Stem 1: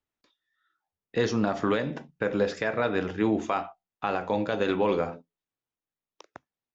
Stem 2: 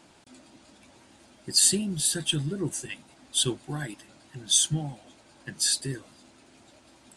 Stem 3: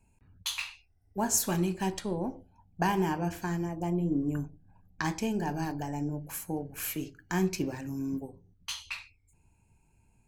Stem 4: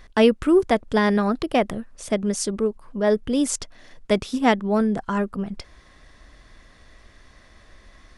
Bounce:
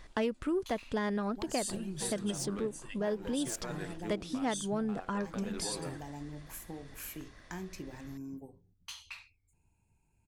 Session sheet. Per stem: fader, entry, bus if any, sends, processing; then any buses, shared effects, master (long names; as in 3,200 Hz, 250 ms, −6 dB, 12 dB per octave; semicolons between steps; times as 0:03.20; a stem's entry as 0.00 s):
−14.0 dB, 0.85 s, no send, dead-zone distortion −40 dBFS
−10.0 dB, 0.00 s, no send, no processing
−7.0 dB, 0.20 s, no send, downward compressor 4 to 1, threshold −33 dBFS, peak gain reduction 9.5 dB
−5.0 dB, 0.00 s, no send, phase distortion by the signal itself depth 0.05 ms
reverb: not used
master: downward compressor 2.5 to 1, threshold −34 dBFS, peak gain reduction 12 dB